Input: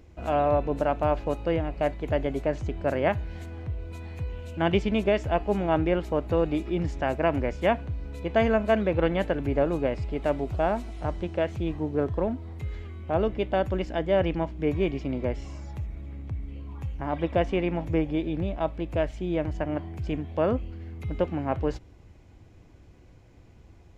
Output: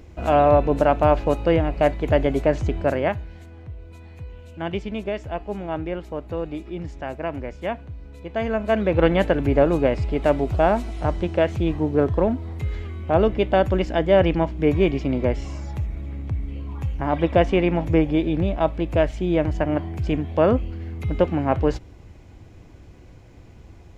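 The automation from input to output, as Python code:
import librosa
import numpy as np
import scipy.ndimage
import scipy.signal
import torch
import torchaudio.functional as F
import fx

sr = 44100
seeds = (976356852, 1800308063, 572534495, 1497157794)

y = fx.gain(x, sr, db=fx.line((2.76, 7.5), (3.38, -4.0), (8.33, -4.0), (9.05, 7.0)))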